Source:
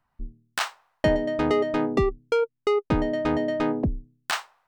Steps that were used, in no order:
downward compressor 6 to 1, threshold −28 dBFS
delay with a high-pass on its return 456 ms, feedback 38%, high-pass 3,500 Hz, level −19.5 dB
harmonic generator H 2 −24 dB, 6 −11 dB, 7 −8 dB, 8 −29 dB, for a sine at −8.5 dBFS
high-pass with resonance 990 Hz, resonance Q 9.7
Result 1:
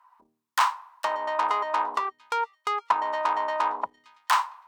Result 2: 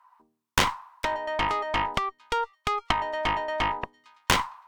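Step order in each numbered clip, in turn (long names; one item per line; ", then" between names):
delay with a high-pass on its return, then downward compressor, then harmonic generator, then high-pass with resonance
delay with a high-pass on its return, then downward compressor, then high-pass with resonance, then harmonic generator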